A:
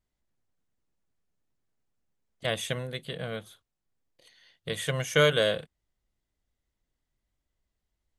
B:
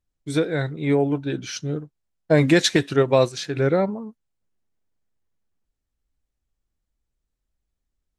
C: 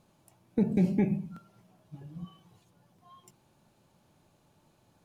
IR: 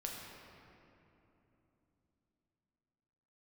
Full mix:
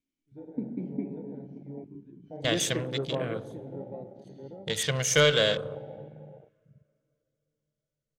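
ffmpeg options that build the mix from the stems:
-filter_complex "[0:a]equalizer=frequency=6200:width_type=o:width=1.2:gain=12,acontrast=87,volume=-9dB,asplit=3[link_01][link_02][link_03];[link_02]volume=-6.5dB[link_04];[1:a]lowpass=frequency=1400:poles=1,aemphasis=mode=reproduction:type=cd,bandreject=frequency=73.28:width_type=h:width=4,bandreject=frequency=146.56:width_type=h:width=4,bandreject=frequency=219.84:width_type=h:width=4,bandreject=frequency=293.12:width_type=h:width=4,bandreject=frequency=366.4:width_type=h:width=4,bandreject=frequency=439.68:width_type=h:width=4,bandreject=frequency=512.96:width_type=h:width=4,bandreject=frequency=586.24:width_type=h:width=4,bandreject=frequency=659.52:width_type=h:width=4,bandreject=frequency=732.8:width_type=h:width=4,bandreject=frequency=806.08:width_type=h:width=4,bandreject=frequency=879.36:width_type=h:width=4,bandreject=frequency=952.64:width_type=h:width=4,bandreject=frequency=1025.92:width_type=h:width=4,bandreject=frequency=1099.2:width_type=h:width=4,bandreject=frequency=1172.48:width_type=h:width=4,bandreject=frequency=1245.76:width_type=h:width=4,bandreject=frequency=1319.04:width_type=h:width=4,bandreject=frequency=1392.32:width_type=h:width=4,bandreject=frequency=1465.6:width_type=h:width=4,bandreject=frequency=1538.88:width_type=h:width=4,bandreject=frequency=1612.16:width_type=h:width=4,bandreject=frequency=1685.44:width_type=h:width=4,bandreject=frequency=1758.72:width_type=h:width=4,bandreject=frequency=1832:width_type=h:width=4,bandreject=frequency=1905.28:width_type=h:width=4,bandreject=frequency=1978.56:width_type=h:width=4,bandreject=frequency=2051.84:width_type=h:width=4,volume=-17.5dB,asplit=3[link_05][link_06][link_07];[link_06]volume=-4.5dB[link_08];[link_07]volume=-6dB[link_09];[2:a]asplit=3[link_10][link_11][link_12];[link_10]bandpass=frequency=270:width_type=q:width=8,volume=0dB[link_13];[link_11]bandpass=frequency=2290:width_type=q:width=8,volume=-6dB[link_14];[link_12]bandpass=frequency=3010:width_type=q:width=8,volume=-9dB[link_15];[link_13][link_14][link_15]amix=inputs=3:normalize=0,equalizer=frequency=160:width_type=o:width=1.5:gain=-6.5,acontrast=81,volume=-2dB,asplit=3[link_16][link_17][link_18];[link_17]volume=-6.5dB[link_19];[link_18]volume=-14.5dB[link_20];[link_03]apad=whole_len=361024[link_21];[link_05][link_21]sidechaingate=range=-33dB:threshold=-43dB:ratio=16:detection=peak[link_22];[3:a]atrim=start_sample=2205[link_23];[link_04][link_08][link_19]amix=inputs=3:normalize=0[link_24];[link_24][link_23]afir=irnorm=-1:irlink=0[link_25];[link_09][link_20]amix=inputs=2:normalize=0,aecho=0:1:791:1[link_26];[link_01][link_22][link_16][link_25][link_26]amix=inputs=5:normalize=0,afwtdn=0.0126"

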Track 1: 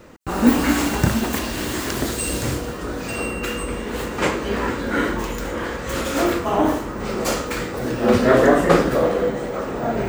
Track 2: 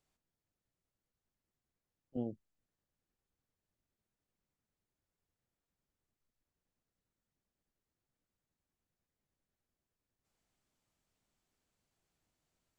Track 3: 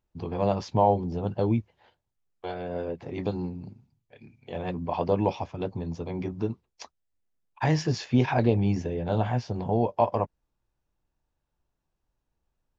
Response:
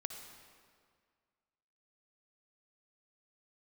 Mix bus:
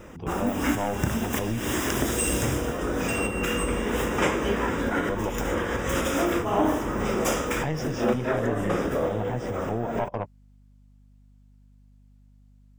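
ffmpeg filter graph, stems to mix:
-filter_complex "[0:a]dynaudnorm=framelen=640:gausssize=3:maxgain=5dB,volume=0dB[link_01];[1:a]volume=3dB[link_02];[2:a]aeval=exprs='(tanh(7.08*val(0)+0.55)-tanh(0.55))/7.08':channel_layout=same,aeval=exprs='val(0)+0.002*(sin(2*PI*50*n/s)+sin(2*PI*2*50*n/s)/2+sin(2*PI*3*50*n/s)/3+sin(2*PI*4*50*n/s)/4+sin(2*PI*5*50*n/s)/5)':channel_layout=same,volume=0.5dB,asplit=2[link_03][link_04];[link_04]apad=whole_len=444745[link_05];[link_01][link_05]sidechaincompress=threshold=-34dB:ratio=3:attack=16:release=159[link_06];[link_06][link_03]amix=inputs=2:normalize=0,asuperstop=centerf=4300:order=4:qfactor=3.5,acompressor=threshold=-25dB:ratio=2,volume=0dB[link_07];[link_02][link_07]amix=inputs=2:normalize=0"

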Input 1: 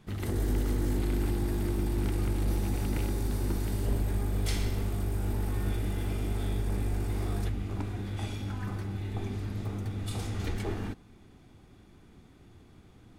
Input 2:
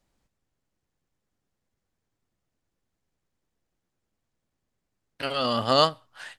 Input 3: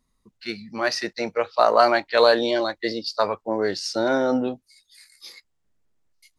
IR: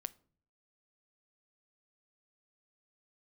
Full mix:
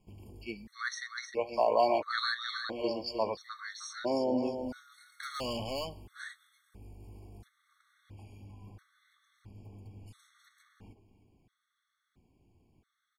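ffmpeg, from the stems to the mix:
-filter_complex "[0:a]alimiter=level_in=5.5dB:limit=-24dB:level=0:latency=1:release=402,volume=-5.5dB,volume=-12.5dB,asplit=2[link_01][link_02];[link_02]volume=-14dB[link_03];[1:a]acompressor=threshold=-24dB:ratio=6,asoftclip=type=hard:threshold=-30dB,volume=-1.5dB[link_04];[2:a]volume=-8.5dB,asplit=3[link_05][link_06][link_07];[link_06]volume=-7.5dB[link_08];[link_07]apad=whole_len=581306[link_09];[link_01][link_09]sidechaincompress=threshold=-52dB:ratio=3:attack=16:release=136[link_10];[link_03][link_08]amix=inputs=2:normalize=0,aecho=0:1:309|618|927|1236|1545:1|0.35|0.122|0.0429|0.015[link_11];[link_10][link_04][link_05][link_11]amix=inputs=4:normalize=0,afftfilt=real='re*gt(sin(2*PI*0.74*pts/sr)*(1-2*mod(floor(b*sr/1024/1100),2)),0)':imag='im*gt(sin(2*PI*0.74*pts/sr)*(1-2*mod(floor(b*sr/1024/1100),2)),0)':win_size=1024:overlap=0.75"

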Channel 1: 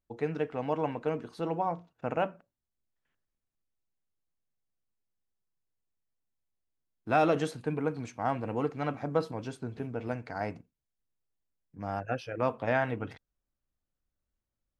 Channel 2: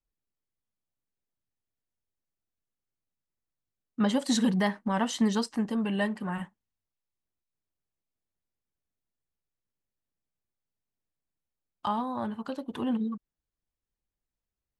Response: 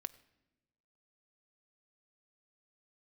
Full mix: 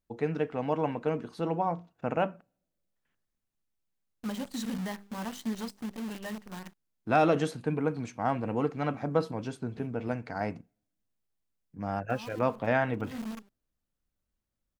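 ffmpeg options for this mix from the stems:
-filter_complex "[0:a]volume=0.5dB,asplit=3[link_01][link_02][link_03];[link_02]volume=-20dB[link_04];[1:a]bandreject=frequency=50:width_type=h:width=6,bandreject=frequency=100:width_type=h:width=6,bandreject=frequency=150:width_type=h:width=6,bandreject=frequency=200:width_type=h:width=6,bandreject=frequency=250:width_type=h:width=6,acrusher=bits=6:dc=4:mix=0:aa=0.000001,adelay=250,volume=-11dB[link_05];[link_03]apad=whole_len=663364[link_06];[link_05][link_06]sidechaincompress=threshold=-44dB:ratio=4:attack=39:release=126[link_07];[2:a]atrim=start_sample=2205[link_08];[link_04][link_08]afir=irnorm=-1:irlink=0[link_09];[link_01][link_07][link_09]amix=inputs=3:normalize=0,equalizer=frequency=200:width_type=o:width=0.68:gain=4,asoftclip=type=hard:threshold=-12dB"

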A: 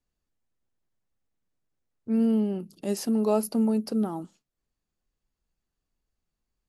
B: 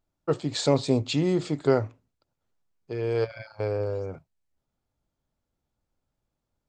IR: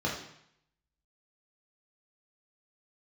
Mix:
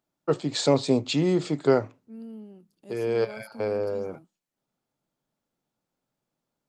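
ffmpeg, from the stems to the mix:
-filter_complex "[0:a]volume=-18dB[link_01];[1:a]highpass=frequency=140:width=0.5412,highpass=frequency=140:width=1.3066,volume=1.5dB[link_02];[link_01][link_02]amix=inputs=2:normalize=0"

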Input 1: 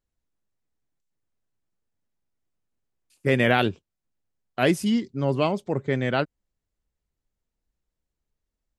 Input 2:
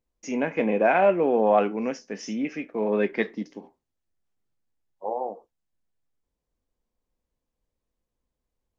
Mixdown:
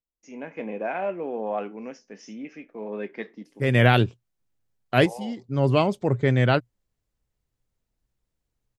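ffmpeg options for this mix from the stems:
ffmpeg -i stem1.wav -i stem2.wav -filter_complex "[0:a]equalizer=frequency=120:width=5.8:gain=9.5,adelay=350,volume=-4.5dB[link_01];[1:a]volume=-16dB,asplit=2[link_02][link_03];[link_03]apad=whole_len=402656[link_04];[link_01][link_04]sidechaincompress=threshold=-55dB:ratio=8:attack=43:release=402[link_05];[link_05][link_02]amix=inputs=2:normalize=0,dynaudnorm=framelen=150:gausssize=5:maxgain=7dB" out.wav

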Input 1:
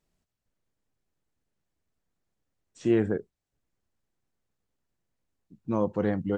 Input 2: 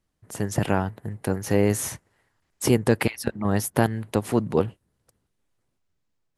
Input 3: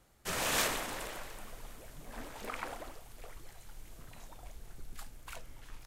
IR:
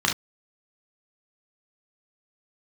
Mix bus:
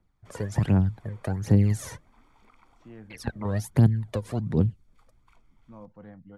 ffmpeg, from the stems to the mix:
-filter_complex "[0:a]equalizer=frequency=380:width_type=o:width=0.49:gain=-14,volume=-17.5dB[link_01];[1:a]equalizer=frequency=2800:width_type=o:width=0.31:gain=-5,aphaser=in_gain=1:out_gain=1:delay=2.2:decay=0.7:speed=1.3:type=triangular,volume=-2dB,asplit=3[link_02][link_03][link_04];[link_02]atrim=end=2.1,asetpts=PTS-STARTPTS,afade=type=out:start_time=2.096:duration=0.004:curve=hsin[link_05];[link_03]atrim=start=2.1:end=3.1,asetpts=PTS-STARTPTS,volume=0[link_06];[link_04]atrim=start=3.1,asetpts=PTS-STARTPTS,afade=type=in:duration=0.004:curve=hsin[link_07];[link_05][link_06][link_07]concat=n=3:v=0:a=1[link_08];[2:a]aecho=1:1:0.9:0.65,acrossover=split=160|960|3300[link_09][link_10][link_11][link_12];[link_09]acompressor=threshold=-43dB:ratio=4[link_13];[link_10]acompressor=threshold=-49dB:ratio=4[link_14];[link_11]acompressor=threshold=-47dB:ratio=4[link_15];[link_12]acompressor=threshold=-50dB:ratio=4[link_16];[link_13][link_14][link_15][link_16]amix=inputs=4:normalize=0,volume=-14.5dB[link_17];[link_01][link_08][link_17]amix=inputs=3:normalize=0,aemphasis=mode=reproduction:type=75fm,acrossover=split=220|3000[link_18][link_19][link_20];[link_19]acompressor=threshold=-32dB:ratio=6[link_21];[link_18][link_21][link_20]amix=inputs=3:normalize=0"

